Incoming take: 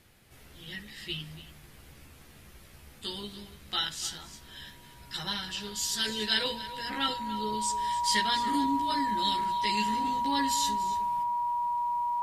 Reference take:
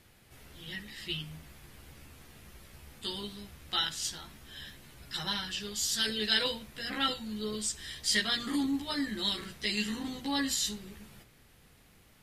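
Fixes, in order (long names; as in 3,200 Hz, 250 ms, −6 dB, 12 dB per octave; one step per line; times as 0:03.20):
notch filter 960 Hz, Q 30
echo removal 286 ms −15 dB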